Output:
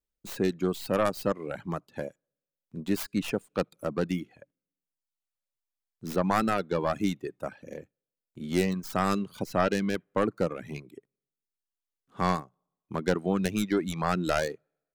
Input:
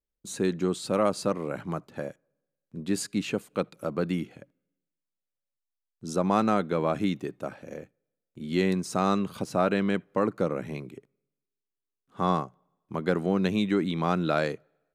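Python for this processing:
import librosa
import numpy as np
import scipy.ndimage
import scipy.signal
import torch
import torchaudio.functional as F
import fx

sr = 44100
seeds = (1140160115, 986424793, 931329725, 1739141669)

y = fx.tracing_dist(x, sr, depth_ms=0.26)
y = fx.dereverb_blind(y, sr, rt60_s=0.88)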